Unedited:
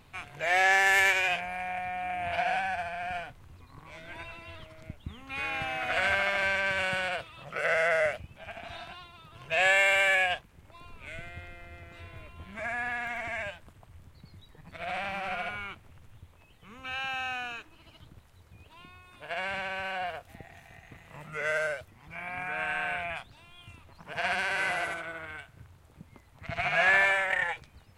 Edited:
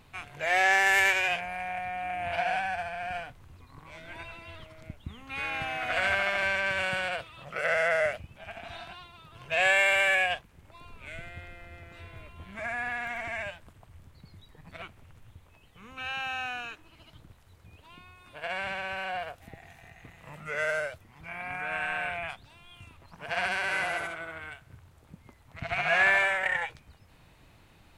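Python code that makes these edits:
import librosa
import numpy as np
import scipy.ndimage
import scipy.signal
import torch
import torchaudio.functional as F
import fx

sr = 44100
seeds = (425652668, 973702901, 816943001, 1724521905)

y = fx.edit(x, sr, fx.cut(start_s=14.82, length_s=0.87), tone=tone)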